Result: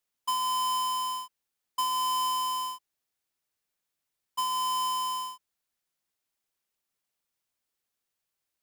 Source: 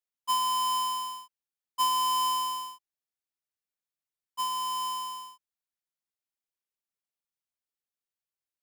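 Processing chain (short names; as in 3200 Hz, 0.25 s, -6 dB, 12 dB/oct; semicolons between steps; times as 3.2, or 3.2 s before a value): compressor, threshold -38 dBFS, peak gain reduction 12.5 dB; gain +8.5 dB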